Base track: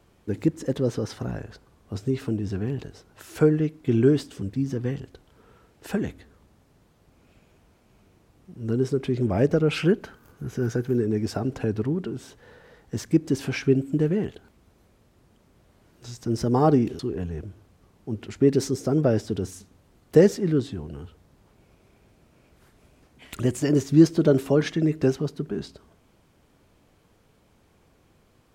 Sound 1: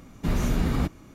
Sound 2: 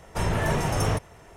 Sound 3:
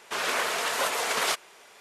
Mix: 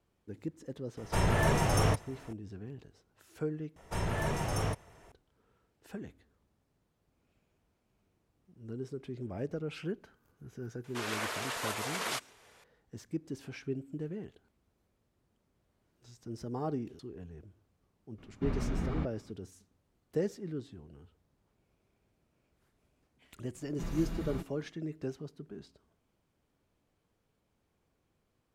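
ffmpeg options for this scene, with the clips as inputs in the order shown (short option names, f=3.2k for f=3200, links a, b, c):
-filter_complex "[2:a]asplit=2[a][b];[1:a]asplit=2[c][d];[0:a]volume=-16.5dB[e];[c]lowpass=2.9k[f];[d]aecho=1:1:6:0.41[g];[e]asplit=2[h][i];[h]atrim=end=3.764[j];[b]atrim=end=1.36,asetpts=PTS-STARTPTS,volume=-8dB[k];[i]atrim=start=5.116[l];[a]atrim=end=1.36,asetpts=PTS-STARTPTS,volume=-2.5dB,afade=t=in:d=0.004:c=hsin,afade=t=out:st=1.356:d=0.004:c=hsin,adelay=970[m];[3:a]atrim=end=1.8,asetpts=PTS-STARTPTS,volume=-9dB,afade=t=in:d=0.004:c=hsin,afade=t=out:st=1.796:d=0.004:c=hsin,adelay=10840[n];[f]atrim=end=1.14,asetpts=PTS-STARTPTS,volume=-9.5dB,afade=t=in:d=0.004:c=hsin,afade=t=out:st=1.136:d=0.004:c=hsin,adelay=18180[o];[g]atrim=end=1.14,asetpts=PTS-STARTPTS,volume=-14.5dB,afade=t=in:d=0.004:c=hsin,afade=t=out:st=1.136:d=0.004:c=hsin,adelay=23550[p];[j][k]acrossfade=d=0.004:c1=hsin:c2=hsin[q];[q][l]acrossfade=d=0.004:c1=hsin:c2=hsin[r];[r][m][n][o][p]amix=inputs=5:normalize=0"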